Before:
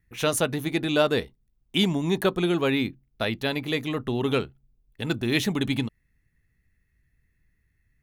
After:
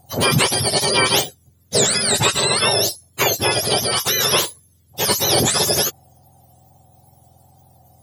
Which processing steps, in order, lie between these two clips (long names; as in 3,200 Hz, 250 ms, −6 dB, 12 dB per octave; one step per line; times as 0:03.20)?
frequency axis turned over on the octave scale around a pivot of 1,200 Hz
tape wow and flutter 42 cents
every bin compressed towards the loudest bin 2 to 1
level +5 dB